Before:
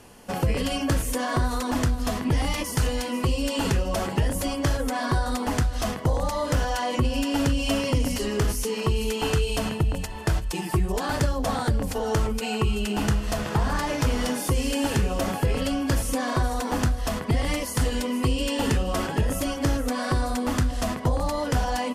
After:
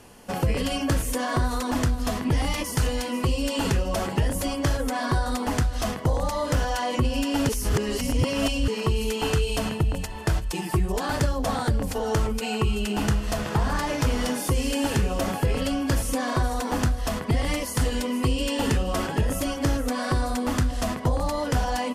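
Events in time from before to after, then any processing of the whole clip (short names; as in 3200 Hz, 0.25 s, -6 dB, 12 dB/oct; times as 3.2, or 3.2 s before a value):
7.49–8.68 reverse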